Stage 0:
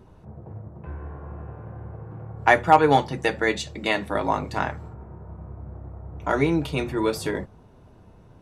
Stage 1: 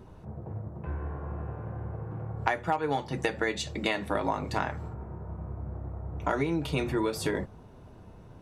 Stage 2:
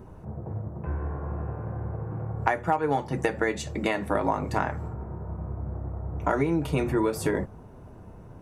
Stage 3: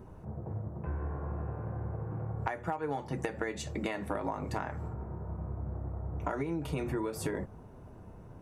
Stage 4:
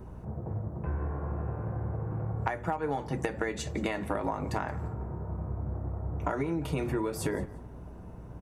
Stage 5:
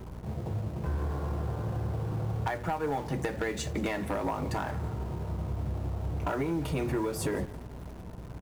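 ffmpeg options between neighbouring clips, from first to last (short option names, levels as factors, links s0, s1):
-af "acompressor=threshold=0.0562:ratio=12,volume=1.12"
-af "equalizer=f=3800:w=1.1:g=-10,volume=1.58"
-af "acompressor=threshold=0.0501:ratio=6,volume=0.631"
-af "aeval=exprs='val(0)+0.00316*(sin(2*PI*60*n/s)+sin(2*PI*2*60*n/s)/2+sin(2*PI*3*60*n/s)/3+sin(2*PI*4*60*n/s)/4+sin(2*PI*5*60*n/s)/5)':c=same,aecho=1:1:173|346:0.0944|0.0227,volume=1.41"
-filter_complex "[0:a]asplit=2[s0][s1];[s1]acrusher=bits=6:mix=0:aa=0.000001,volume=0.316[s2];[s0][s2]amix=inputs=2:normalize=0,asoftclip=type=tanh:threshold=0.075"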